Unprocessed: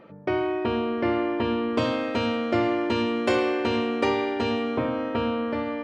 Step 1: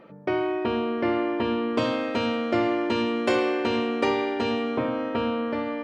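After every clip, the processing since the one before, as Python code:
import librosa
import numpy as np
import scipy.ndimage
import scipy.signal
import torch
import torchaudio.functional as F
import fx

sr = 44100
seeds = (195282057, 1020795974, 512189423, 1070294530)

y = fx.peak_eq(x, sr, hz=88.0, db=-9.0, octaves=0.56)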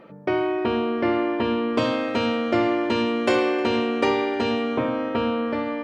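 y = x + 10.0 ** (-22.5 / 20.0) * np.pad(x, (int(308 * sr / 1000.0), 0))[:len(x)]
y = y * 10.0 ** (2.5 / 20.0)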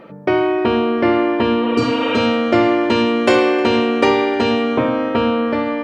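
y = fx.spec_repair(x, sr, seeds[0], start_s=1.66, length_s=0.49, low_hz=460.0, high_hz=3900.0, source='both')
y = y * 10.0 ** (7.0 / 20.0)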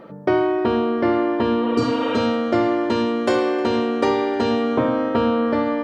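y = fx.rider(x, sr, range_db=10, speed_s=0.5)
y = fx.peak_eq(y, sr, hz=2500.0, db=-8.5, octaves=0.57)
y = y * 10.0 ** (-3.5 / 20.0)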